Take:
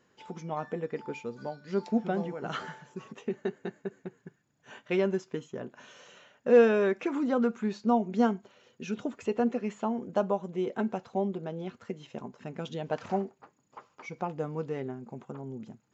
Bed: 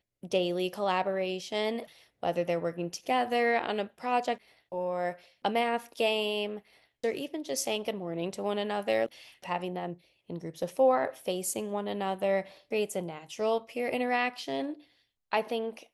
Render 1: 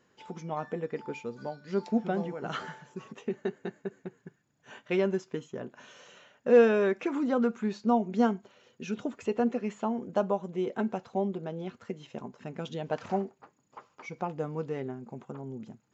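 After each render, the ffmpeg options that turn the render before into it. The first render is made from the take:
ffmpeg -i in.wav -af anull out.wav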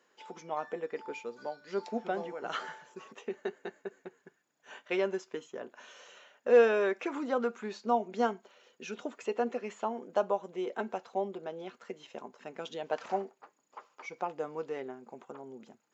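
ffmpeg -i in.wav -af "highpass=410" out.wav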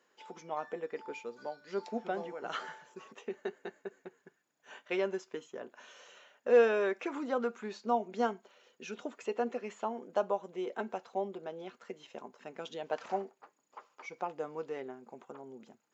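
ffmpeg -i in.wav -af "volume=-2dB" out.wav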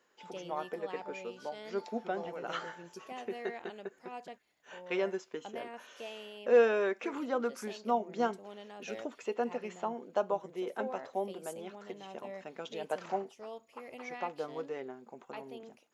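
ffmpeg -i in.wav -i bed.wav -filter_complex "[1:a]volume=-17dB[link_01];[0:a][link_01]amix=inputs=2:normalize=0" out.wav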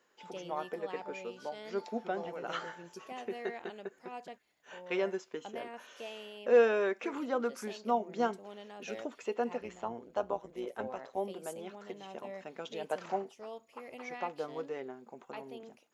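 ffmpeg -i in.wav -filter_complex "[0:a]asplit=3[link_01][link_02][link_03];[link_01]afade=type=out:start_time=9.6:duration=0.02[link_04];[link_02]tremolo=f=120:d=0.621,afade=type=in:start_time=9.6:duration=0.02,afade=type=out:start_time=11.17:duration=0.02[link_05];[link_03]afade=type=in:start_time=11.17:duration=0.02[link_06];[link_04][link_05][link_06]amix=inputs=3:normalize=0" out.wav

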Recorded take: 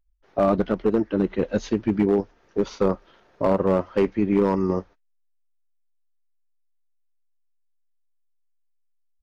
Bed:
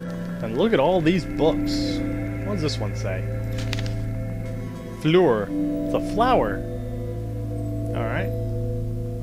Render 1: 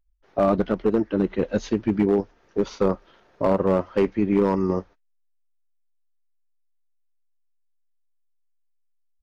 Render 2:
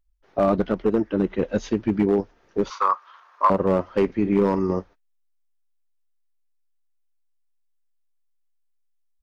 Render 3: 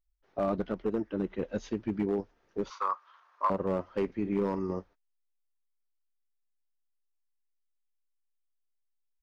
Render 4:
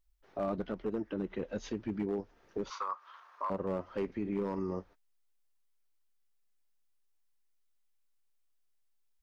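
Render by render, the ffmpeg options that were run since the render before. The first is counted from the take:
ffmpeg -i in.wav -af anull out.wav
ffmpeg -i in.wav -filter_complex "[0:a]asettb=1/sr,asplit=3[link_01][link_02][link_03];[link_01]atrim=end=0.814[link_04];[link_02]atrim=start=0.81:end=1.74,asetpts=PTS-STARTPTS,afade=type=in:duration=0.004:curve=qsin,afade=type=out:start_time=0.926:duration=0.004:curve=qsin,bandreject=frequency=4200:width=12[link_05];[link_03]atrim=start=1.736[link_06];[link_04][link_05]acrossfade=duration=0.004:curve1=hsin:curve2=qsin[link_07];[link_07][link_06]acrossfade=duration=0.004:curve1=qsin:curve2=hsin,asettb=1/sr,asplit=3[link_08][link_09][link_10];[link_08]atrim=end=2.704[link_11];[link_09]atrim=start=2.7:end=3.5,asetpts=PTS-STARTPTS,afade=type=in:duration=0.004:curve=qsin,afade=type=out:start_time=0.796:duration=0.004:curve=qsin,highpass=frequency=1100:width_type=q:width=7.2[link_12];[link_10]atrim=start=3.496[link_13];[link_11][link_12]acrossfade=duration=0.004:curve1=hsin:curve2=qsin[link_14];[link_14][link_13]acrossfade=duration=0.004:curve1=qsin:curve2=hsin,asettb=1/sr,asplit=3[link_15][link_16][link_17];[link_15]atrim=end=4.054[link_18];[link_16]atrim=start=4.05:end=4.72,asetpts=PTS-STARTPTS,afade=type=in:duration=0.004:curve=qsin,afade=type=out:start_time=0.666:duration=0.004:curve=qsin,asplit=2[link_19][link_20];[link_20]adelay=45,volume=-13.5dB[link_21];[link_19][link_21]amix=inputs=2:normalize=0,atrim=end_sample=29547[link_22];[link_17]atrim=start=4.716[link_23];[link_18][link_22]acrossfade=duration=0.004:curve1=hsin:curve2=qsin[link_24];[link_24][link_23]acrossfade=duration=0.004:curve1=qsin:curve2=hsin" out.wav
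ffmpeg -i in.wav -af "volume=-10dB" out.wav
ffmpeg -i in.wav -filter_complex "[0:a]asplit=2[link_01][link_02];[link_02]acompressor=threshold=-38dB:ratio=6,volume=-1dB[link_03];[link_01][link_03]amix=inputs=2:normalize=0,alimiter=level_in=3dB:limit=-24dB:level=0:latency=1:release=134,volume=-3dB" out.wav

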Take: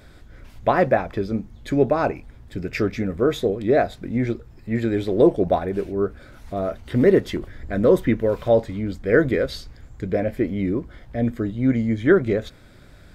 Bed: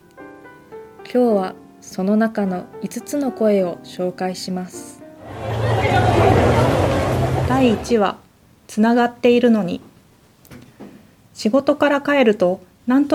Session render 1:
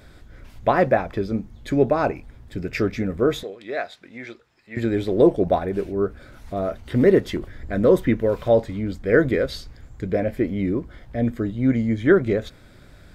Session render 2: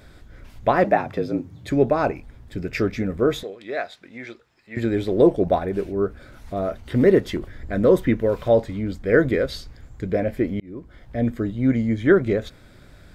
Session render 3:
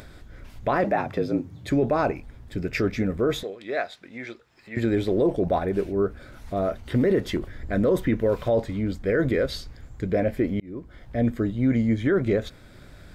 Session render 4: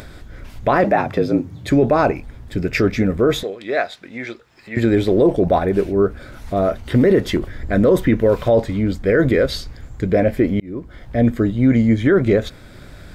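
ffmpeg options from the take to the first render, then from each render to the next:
ffmpeg -i in.wav -filter_complex "[0:a]asettb=1/sr,asplit=3[link_01][link_02][link_03];[link_01]atrim=end=3.434[link_04];[link_02]atrim=start=3.43:end=4.77,asetpts=PTS-STARTPTS,afade=type=in:duration=0.004:curve=qsin,afade=type=out:start_time=1.336:duration=0.004:curve=qsin,bandpass=frequency=3000:width_type=q:width=0.58[link_05];[link_03]atrim=start=4.766[link_06];[link_04][link_05]acrossfade=duration=0.004:curve1=hsin:curve2=qsin[link_07];[link_07][link_06]acrossfade=duration=0.004:curve1=qsin:curve2=hsin" out.wav
ffmpeg -i in.wav -filter_complex "[0:a]asettb=1/sr,asplit=3[link_01][link_02][link_03];[link_01]atrim=end=0.844[link_04];[link_02]atrim=start=0.84:end=1.7,asetpts=PTS-STARTPTS,afade=type=in:duration=0.004:curve=qsin,afade=type=out:start_time=0.856:duration=0.004:curve=qsin,afreqshift=66[link_05];[link_03]atrim=start=1.696[link_06];[link_04][link_05]acrossfade=duration=0.004:curve1=hsin:curve2=qsin[link_07];[link_07][link_06]acrossfade=duration=0.004:curve1=qsin:curve2=hsin,asplit=2[link_08][link_09];[link_08]atrim=end=10.6,asetpts=PTS-STARTPTS,afade=type=out:start_time=10.596:duration=0.004:curve=hsin[link_10];[link_09]atrim=start=10.6,asetpts=PTS-STARTPTS,afade=type=in:duration=0.56[link_11];[link_10][link_11]concat=n=2:v=0:a=1" out.wav
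ffmpeg -i in.wav -af "alimiter=limit=-14dB:level=0:latency=1:release=17,acompressor=mode=upward:threshold=-41dB:ratio=2.5" out.wav
ffmpeg -i in.wav -af "volume=7.5dB" out.wav

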